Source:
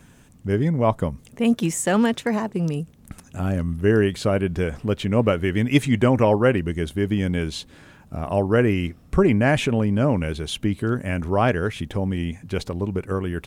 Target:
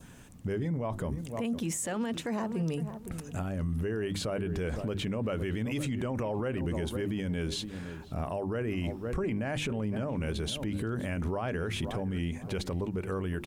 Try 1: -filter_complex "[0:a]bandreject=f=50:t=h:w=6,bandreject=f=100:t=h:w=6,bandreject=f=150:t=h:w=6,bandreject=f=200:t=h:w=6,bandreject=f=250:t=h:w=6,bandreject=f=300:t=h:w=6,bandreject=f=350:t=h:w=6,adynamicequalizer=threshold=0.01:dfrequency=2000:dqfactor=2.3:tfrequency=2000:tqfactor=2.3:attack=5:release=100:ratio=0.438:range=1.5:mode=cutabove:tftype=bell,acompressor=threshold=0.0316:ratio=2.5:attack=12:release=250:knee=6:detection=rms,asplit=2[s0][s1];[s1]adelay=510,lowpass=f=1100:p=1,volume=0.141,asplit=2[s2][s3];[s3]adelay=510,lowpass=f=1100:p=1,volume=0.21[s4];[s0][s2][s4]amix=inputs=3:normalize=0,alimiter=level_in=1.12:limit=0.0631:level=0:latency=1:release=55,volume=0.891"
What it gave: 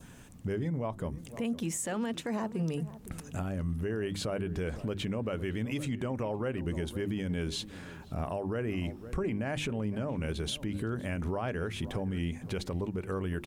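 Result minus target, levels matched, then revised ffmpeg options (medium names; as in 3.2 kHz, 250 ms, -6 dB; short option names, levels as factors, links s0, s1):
compression: peak gain reduction +12 dB
-filter_complex "[0:a]bandreject=f=50:t=h:w=6,bandreject=f=100:t=h:w=6,bandreject=f=150:t=h:w=6,bandreject=f=200:t=h:w=6,bandreject=f=250:t=h:w=6,bandreject=f=300:t=h:w=6,bandreject=f=350:t=h:w=6,adynamicequalizer=threshold=0.01:dfrequency=2000:dqfactor=2.3:tfrequency=2000:tqfactor=2.3:attack=5:release=100:ratio=0.438:range=1.5:mode=cutabove:tftype=bell,asplit=2[s0][s1];[s1]adelay=510,lowpass=f=1100:p=1,volume=0.141,asplit=2[s2][s3];[s3]adelay=510,lowpass=f=1100:p=1,volume=0.21[s4];[s0][s2][s4]amix=inputs=3:normalize=0,alimiter=level_in=1.12:limit=0.0631:level=0:latency=1:release=55,volume=0.891"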